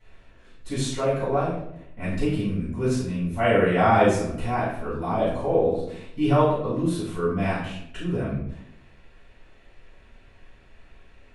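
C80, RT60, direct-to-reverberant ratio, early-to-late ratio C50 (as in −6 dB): 6.0 dB, 0.75 s, −11.5 dB, 2.0 dB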